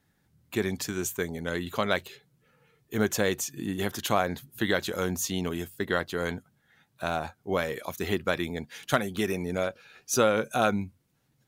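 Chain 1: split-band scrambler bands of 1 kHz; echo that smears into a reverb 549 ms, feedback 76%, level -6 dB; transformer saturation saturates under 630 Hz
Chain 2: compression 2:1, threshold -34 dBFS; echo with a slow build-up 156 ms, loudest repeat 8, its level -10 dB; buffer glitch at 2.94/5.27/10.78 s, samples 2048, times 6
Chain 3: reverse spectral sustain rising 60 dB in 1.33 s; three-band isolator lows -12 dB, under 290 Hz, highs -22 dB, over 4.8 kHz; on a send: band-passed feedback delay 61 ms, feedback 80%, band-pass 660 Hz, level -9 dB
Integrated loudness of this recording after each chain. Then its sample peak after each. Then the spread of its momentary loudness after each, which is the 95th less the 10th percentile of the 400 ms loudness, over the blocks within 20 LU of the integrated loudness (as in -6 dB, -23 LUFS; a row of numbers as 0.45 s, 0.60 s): -27.5 LUFS, -32.5 LUFS, -26.5 LUFS; -8.0 dBFS, -15.0 dBFS, -6.0 dBFS; 7 LU, 4 LU, 13 LU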